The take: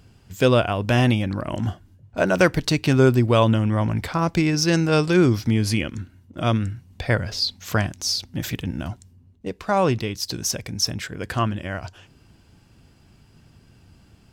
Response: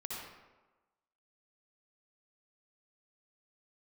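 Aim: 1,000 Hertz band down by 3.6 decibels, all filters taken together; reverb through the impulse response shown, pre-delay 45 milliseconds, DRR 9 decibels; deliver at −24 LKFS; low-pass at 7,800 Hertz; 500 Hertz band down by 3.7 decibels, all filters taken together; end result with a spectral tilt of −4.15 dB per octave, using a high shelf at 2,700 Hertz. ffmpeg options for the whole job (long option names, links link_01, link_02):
-filter_complex "[0:a]lowpass=7800,equalizer=frequency=500:width_type=o:gain=-4,equalizer=frequency=1000:width_type=o:gain=-5,highshelf=frequency=2700:gain=8.5,asplit=2[link_01][link_02];[1:a]atrim=start_sample=2205,adelay=45[link_03];[link_02][link_03]afir=irnorm=-1:irlink=0,volume=-9.5dB[link_04];[link_01][link_04]amix=inputs=2:normalize=0,volume=-3dB"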